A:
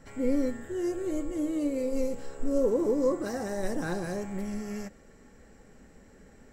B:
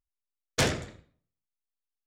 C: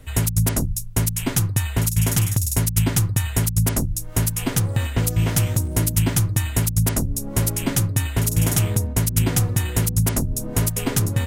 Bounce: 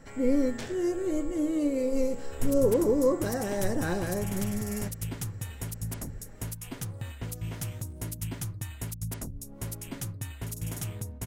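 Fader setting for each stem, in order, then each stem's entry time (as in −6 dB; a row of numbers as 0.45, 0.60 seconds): +2.0, −16.0, −16.0 decibels; 0.00, 0.00, 2.25 seconds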